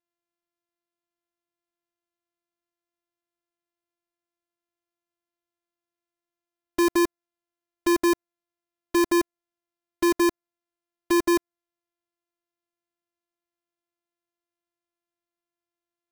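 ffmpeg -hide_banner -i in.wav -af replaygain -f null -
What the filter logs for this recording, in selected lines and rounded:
track_gain = +5.6 dB
track_peak = 0.101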